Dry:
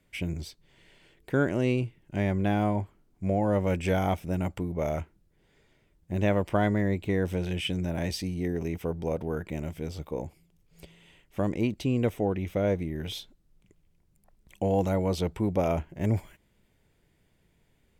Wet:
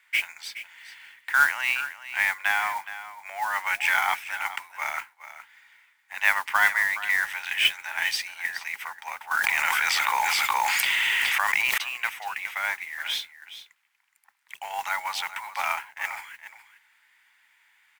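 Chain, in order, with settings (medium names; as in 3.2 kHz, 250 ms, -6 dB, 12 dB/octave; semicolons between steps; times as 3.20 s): Chebyshev high-pass 840 Hz, order 5; peaking EQ 1.9 kHz +13 dB 1.4 oct; modulation noise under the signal 17 dB; delay 419 ms -13.5 dB; 9.31–11.78 s: level flattener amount 100%; trim +5 dB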